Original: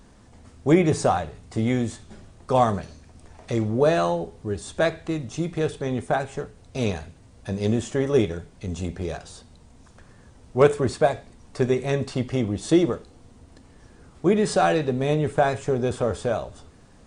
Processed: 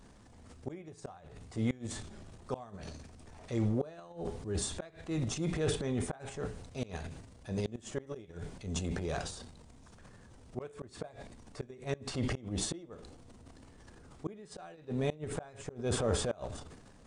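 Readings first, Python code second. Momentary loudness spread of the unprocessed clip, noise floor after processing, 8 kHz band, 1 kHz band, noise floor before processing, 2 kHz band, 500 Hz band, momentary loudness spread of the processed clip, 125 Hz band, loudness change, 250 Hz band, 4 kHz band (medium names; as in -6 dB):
13 LU, -57 dBFS, -4.0 dB, -20.0 dB, -52 dBFS, -14.5 dB, -16.0 dB, 22 LU, -10.5 dB, -14.0 dB, -13.5 dB, -7.0 dB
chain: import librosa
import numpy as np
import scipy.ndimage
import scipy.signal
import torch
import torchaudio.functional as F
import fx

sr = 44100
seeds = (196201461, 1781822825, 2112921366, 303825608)

y = fx.gate_flip(x, sr, shuts_db=-13.0, range_db=-34)
y = fx.transient(y, sr, attack_db=-6, sustain_db=11)
y = y * librosa.db_to_amplitude(-6.5)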